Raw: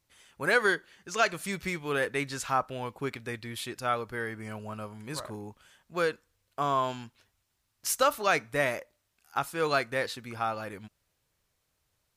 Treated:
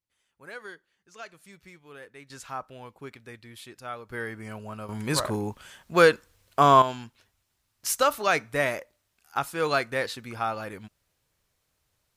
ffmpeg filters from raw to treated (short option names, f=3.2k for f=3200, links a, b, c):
-af "asetnsamples=n=441:p=0,asendcmd='2.3 volume volume -8dB;4.1 volume volume 0.5dB;4.89 volume volume 11dB;6.82 volume volume 2dB',volume=-17dB"